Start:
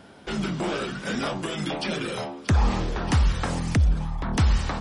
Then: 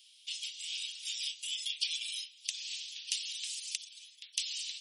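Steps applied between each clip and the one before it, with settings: steep high-pass 2.8 kHz 48 dB/octave; trim +1.5 dB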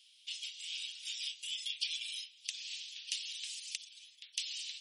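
tilt EQ -2.5 dB/octave; trim +2 dB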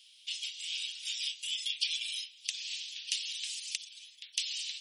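band-stop 1.3 kHz, Q 13; trim +4.5 dB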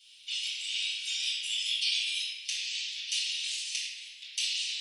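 reverberation RT60 1.9 s, pre-delay 4 ms, DRR -10.5 dB; trim -6.5 dB

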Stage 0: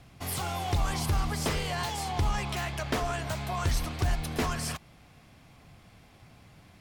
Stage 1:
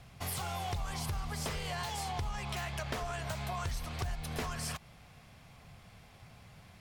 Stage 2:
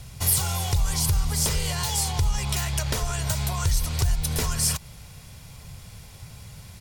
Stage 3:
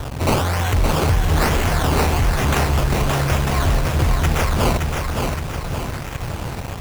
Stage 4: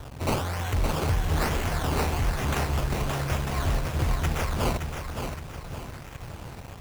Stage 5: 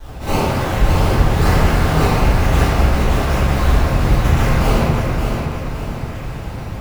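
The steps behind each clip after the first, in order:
peaking EQ 300 Hz -9 dB 0.57 oct; compression, threshold -34 dBFS, peak gain reduction 10.5 dB
tone controls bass +8 dB, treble +14 dB; comb 2.1 ms, depth 33%; trim +5 dB
in parallel at -10 dB: fuzz box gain 49 dB, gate -42 dBFS; on the sum: decimation with a swept rate 18×, swing 100% 1.1 Hz; bit-crushed delay 569 ms, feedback 55%, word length 7-bit, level -4 dB
upward expansion 1.5:1, over -25 dBFS; trim -7 dB
reverberation RT60 2.5 s, pre-delay 4 ms, DRR -17 dB; trim -6.5 dB

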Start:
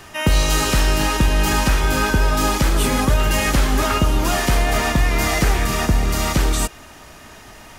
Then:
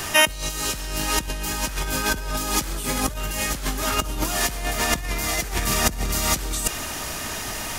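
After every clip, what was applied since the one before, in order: treble shelf 4 kHz +10 dB; compressor with a negative ratio -22 dBFS, ratio -0.5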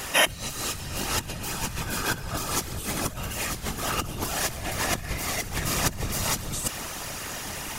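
whisper effect; trim -4.5 dB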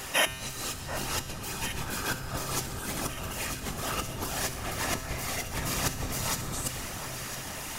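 feedback comb 130 Hz, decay 1.2 s, harmonics all, mix 70%; echo whose repeats swap between lows and highs 735 ms, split 1.6 kHz, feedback 65%, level -8 dB; trim +5 dB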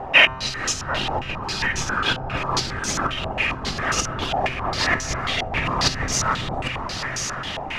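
in parallel at -4 dB: integer overflow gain 16 dB; on the sum: step-sequenced low-pass 7.4 Hz 770–6100 Hz; trim +2.5 dB

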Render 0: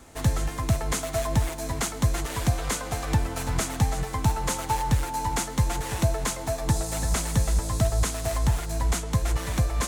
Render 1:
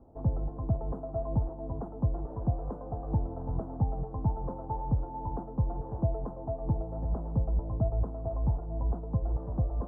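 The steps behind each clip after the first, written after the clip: inverse Chebyshev low-pass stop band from 2.1 kHz, stop band 50 dB; trim -5 dB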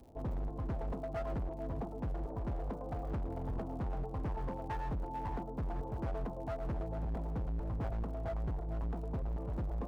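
crackle 100 per s -52 dBFS; hard clipper -33 dBFS, distortion -5 dB; trim -1 dB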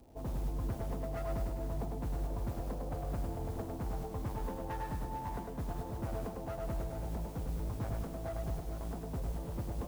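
modulation noise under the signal 23 dB; bit-crushed delay 102 ms, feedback 55%, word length 11-bit, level -5 dB; trim -1.5 dB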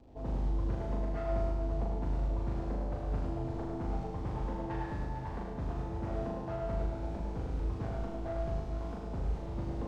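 distance through air 130 m; flutter echo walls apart 6.7 m, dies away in 0.71 s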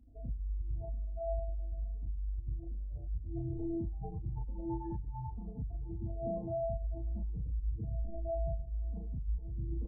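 spectral contrast enhancement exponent 3.1; doubling 33 ms -3 dB; trim -1.5 dB

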